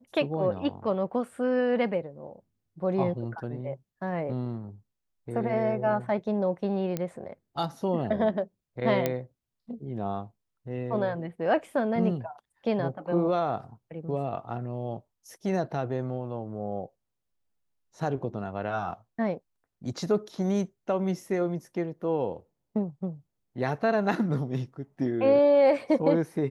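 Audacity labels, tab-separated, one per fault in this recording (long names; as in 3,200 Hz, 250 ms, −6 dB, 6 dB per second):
6.970000	6.970000	click −17 dBFS
9.060000	9.060000	click −12 dBFS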